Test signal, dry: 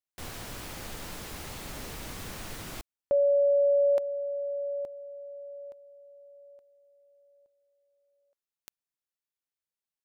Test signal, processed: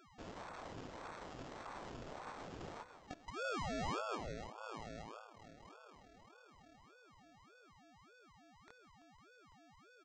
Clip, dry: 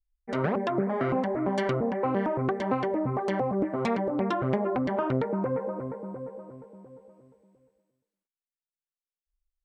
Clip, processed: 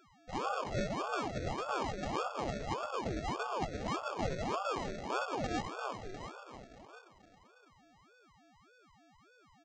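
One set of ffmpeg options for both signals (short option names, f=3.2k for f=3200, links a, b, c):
-filter_complex "[0:a]highpass=46,bandreject=f=426.9:t=h:w=4,bandreject=f=853.8:t=h:w=4,bandreject=f=1.2807k:t=h:w=4,bandreject=f=1.7076k:t=h:w=4,bandreject=f=2.1345k:t=h:w=4,bandreject=f=2.5614k:t=h:w=4,bandreject=f=2.9883k:t=h:w=4,bandreject=f=3.4152k:t=h:w=4,bandreject=f=3.8421k:t=h:w=4,bandreject=f=4.269k:t=h:w=4,bandreject=f=4.6959k:t=h:w=4,bandreject=f=5.1228k:t=h:w=4,bandreject=f=5.5497k:t=h:w=4,bandreject=f=5.9766k:t=h:w=4,bandreject=f=6.4035k:t=h:w=4,bandreject=f=6.8304k:t=h:w=4,bandreject=f=7.2573k:t=h:w=4,bandreject=f=7.6842k:t=h:w=4,bandreject=f=8.1111k:t=h:w=4,bandreject=f=8.538k:t=h:w=4,bandreject=f=8.9649k:t=h:w=4,bandreject=f=9.3918k:t=h:w=4,bandreject=f=9.8187k:t=h:w=4,bandreject=f=10.2456k:t=h:w=4,bandreject=f=10.6725k:t=h:w=4,bandreject=f=11.0994k:t=h:w=4,bandreject=f=11.5263k:t=h:w=4,bandreject=f=11.9532k:t=h:w=4,bandreject=f=12.3801k:t=h:w=4,bandreject=f=12.807k:t=h:w=4,bandreject=f=13.2339k:t=h:w=4,bandreject=f=13.6608k:t=h:w=4,asplit=2[a][b];[b]asplit=7[c][d][e][f][g][h][i];[c]adelay=168,afreqshift=-110,volume=-13dB[j];[d]adelay=336,afreqshift=-220,volume=-16.9dB[k];[e]adelay=504,afreqshift=-330,volume=-20.8dB[l];[f]adelay=672,afreqshift=-440,volume=-24.6dB[m];[g]adelay=840,afreqshift=-550,volume=-28.5dB[n];[h]adelay=1008,afreqshift=-660,volume=-32.4dB[o];[i]adelay=1176,afreqshift=-770,volume=-36.3dB[p];[j][k][l][m][n][o][p]amix=inputs=7:normalize=0[q];[a][q]amix=inputs=2:normalize=0,afftfilt=real='re*(1-between(b*sr/4096,530,3100))':imag='im*(1-between(b*sr/4096,530,3100))':win_size=4096:overlap=0.75,flanger=delay=17:depth=7.5:speed=0.4,aeval=exprs='val(0)+0.00141*sin(2*PI*2500*n/s)':c=same,acrusher=samples=22:mix=1:aa=0.000001,aresample=16000,aresample=44100,aeval=exprs='val(0)*sin(2*PI*590*n/s+590*0.7/1.7*sin(2*PI*1.7*n/s))':c=same,volume=-1.5dB"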